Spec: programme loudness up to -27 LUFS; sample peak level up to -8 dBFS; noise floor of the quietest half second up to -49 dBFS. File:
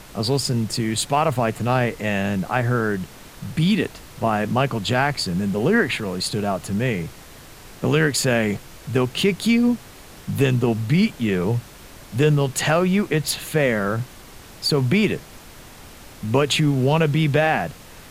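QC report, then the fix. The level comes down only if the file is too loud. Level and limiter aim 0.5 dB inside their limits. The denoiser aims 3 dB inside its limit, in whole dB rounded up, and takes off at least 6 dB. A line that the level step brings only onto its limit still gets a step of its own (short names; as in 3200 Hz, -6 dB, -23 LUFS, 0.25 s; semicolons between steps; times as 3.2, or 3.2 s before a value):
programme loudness -21.5 LUFS: fail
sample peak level -4.5 dBFS: fail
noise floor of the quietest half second -42 dBFS: fail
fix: denoiser 6 dB, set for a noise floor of -42 dBFS; gain -6 dB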